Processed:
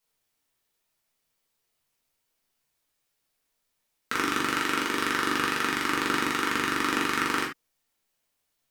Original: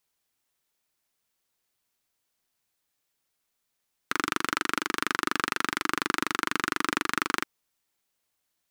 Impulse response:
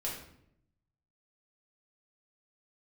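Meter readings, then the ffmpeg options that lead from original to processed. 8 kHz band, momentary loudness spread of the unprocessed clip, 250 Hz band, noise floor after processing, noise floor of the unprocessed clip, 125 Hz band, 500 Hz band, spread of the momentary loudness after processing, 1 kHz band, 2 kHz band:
+1.0 dB, 3 LU, +4.0 dB, -78 dBFS, -79 dBFS, +3.5 dB, +4.5 dB, 3 LU, +1.5 dB, +1.5 dB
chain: -filter_complex "[1:a]atrim=start_sample=2205,atrim=end_sample=4410[a];[0:a][a]afir=irnorm=-1:irlink=0"

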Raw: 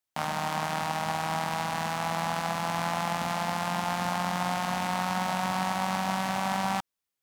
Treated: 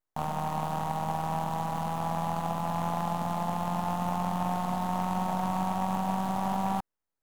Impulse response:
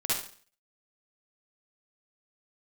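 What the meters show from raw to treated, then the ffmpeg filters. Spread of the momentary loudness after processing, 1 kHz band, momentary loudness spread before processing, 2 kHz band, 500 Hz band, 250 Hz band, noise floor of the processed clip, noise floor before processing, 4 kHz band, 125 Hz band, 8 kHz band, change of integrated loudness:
2 LU, -1.0 dB, 2 LU, -11.5 dB, -1.5 dB, +2.0 dB, under -85 dBFS, under -85 dBFS, -10.5 dB, +2.5 dB, -8.0 dB, -1.5 dB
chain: -filter_complex "[0:a]acrossover=split=540|1200[a][b][c];[c]aeval=exprs='abs(val(0))':c=same[d];[a][b][d]amix=inputs=3:normalize=0,highshelf=f=2.2k:t=q:w=1.5:g=-6"

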